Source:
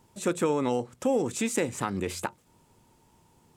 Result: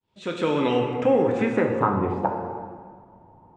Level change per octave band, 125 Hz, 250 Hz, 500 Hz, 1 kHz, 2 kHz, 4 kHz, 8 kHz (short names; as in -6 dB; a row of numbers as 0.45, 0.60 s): +7.0 dB, +5.0 dB, +6.5 dB, +8.5 dB, +4.5 dB, +3.0 dB, under -15 dB